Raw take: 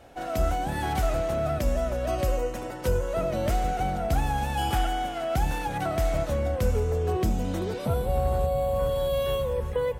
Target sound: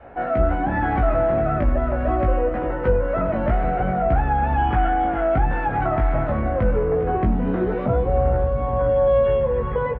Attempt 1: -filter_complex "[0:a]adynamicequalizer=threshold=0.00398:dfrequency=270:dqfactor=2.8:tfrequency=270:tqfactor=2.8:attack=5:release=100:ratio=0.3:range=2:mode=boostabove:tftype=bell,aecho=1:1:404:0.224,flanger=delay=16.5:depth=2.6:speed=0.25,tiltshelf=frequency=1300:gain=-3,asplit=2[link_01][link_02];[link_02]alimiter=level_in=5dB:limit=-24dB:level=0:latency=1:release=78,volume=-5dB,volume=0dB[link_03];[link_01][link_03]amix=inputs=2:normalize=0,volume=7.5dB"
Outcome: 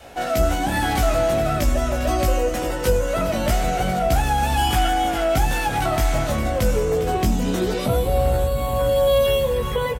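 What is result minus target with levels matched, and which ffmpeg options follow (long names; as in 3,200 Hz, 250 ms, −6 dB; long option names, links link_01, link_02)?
2,000 Hz band +2.5 dB
-filter_complex "[0:a]adynamicequalizer=threshold=0.00398:dfrequency=270:dqfactor=2.8:tfrequency=270:tqfactor=2.8:attack=5:release=100:ratio=0.3:range=2:mode=boostabove:tftype=bell,lowpass=frequency=1800:width=0.5412,lowpass=frequency=1800:width=1.3066,aecho=1:1:404:0.224,flanger=delay=16.5:depth=2.6:speed=0.25,tiltshelf=frequency=1300:gain=-3,asplit=2[link_01][link_02];[link_02]alimiter=level_in=5dB:limit=-24dB:level=0:latency=1:release=78,volume=-5dB,volume=0dB[link_03];[link_01][link_03]amix=inputs=2:normalize=0,volume=7.5dB"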